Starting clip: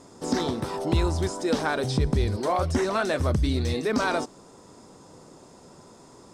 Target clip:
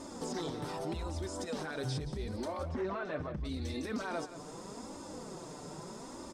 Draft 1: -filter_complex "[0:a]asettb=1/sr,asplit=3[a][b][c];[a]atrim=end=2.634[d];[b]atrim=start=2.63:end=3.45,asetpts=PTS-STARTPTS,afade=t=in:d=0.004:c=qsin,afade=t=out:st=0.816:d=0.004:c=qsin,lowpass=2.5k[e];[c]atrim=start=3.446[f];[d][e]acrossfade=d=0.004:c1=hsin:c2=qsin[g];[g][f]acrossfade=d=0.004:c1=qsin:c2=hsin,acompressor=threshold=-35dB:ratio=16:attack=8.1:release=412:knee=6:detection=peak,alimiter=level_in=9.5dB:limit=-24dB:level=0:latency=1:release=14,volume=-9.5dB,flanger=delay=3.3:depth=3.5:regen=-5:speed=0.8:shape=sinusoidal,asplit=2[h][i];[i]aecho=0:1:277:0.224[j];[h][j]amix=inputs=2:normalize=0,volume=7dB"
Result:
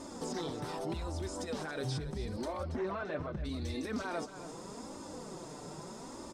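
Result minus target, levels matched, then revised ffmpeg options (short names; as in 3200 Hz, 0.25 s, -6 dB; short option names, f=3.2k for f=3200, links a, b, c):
echo 0.101 s late
-filter_complex "[0:a]asettb=1/sr,asplit=3[a][b][c];[a]atrim=end=2.634[d];[b]atrim=start=2.63:end=3.45,asetpts=PTS-STARTPTS,afade=t=in:d=0.004:c=qsin,afade=t=out:st=0.816:d=0.004:c=qsin,lowpass=2.5k[e];[c]atrim=start=3.446[f];[d][e]acrossfade=d=0.004:c1=hsin:c2=qsin[g];[g][f]acrossfade=d=0.004:c1=qsin:c2=hsin,acompressor=threshold=-35dB:ratio=16:attack=8.1:release=412:knee=6:detection=peak,alimiter=level_in=9.5dB:limit=-24dB:level=0:latency=1:release=14,volume=-9.5dB,flanger=delay=3.3:depth=3.5:regen=-5:speed=0.8:shape=sinusoidal,asplit=2[h][i];[i]aecho=0:1:176:0.224[j];[h][j]amix=inputs=2:normalize=0,volume=7dB"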